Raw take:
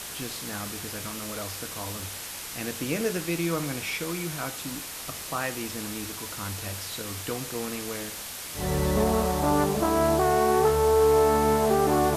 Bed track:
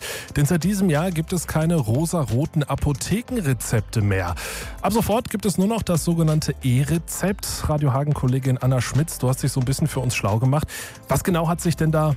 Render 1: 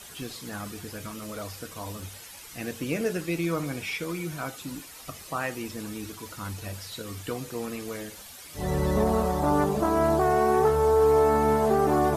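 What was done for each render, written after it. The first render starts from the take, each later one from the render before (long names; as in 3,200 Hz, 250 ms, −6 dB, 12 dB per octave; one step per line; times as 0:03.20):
broadband denoise 11 dB, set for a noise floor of −38 dBFS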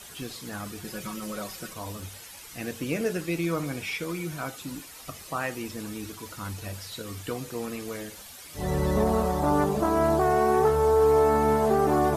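0:00.84–0:01.73: comb filter 5.4 ms, depth 80%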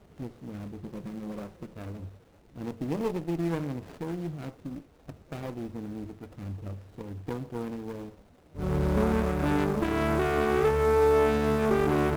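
running median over 41 samples
windowed peak hold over 17 samples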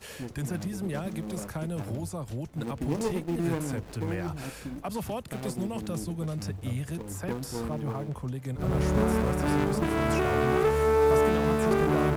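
mix in bed track −14 dB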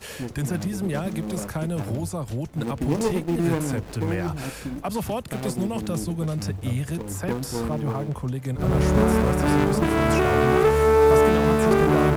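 level +6 dB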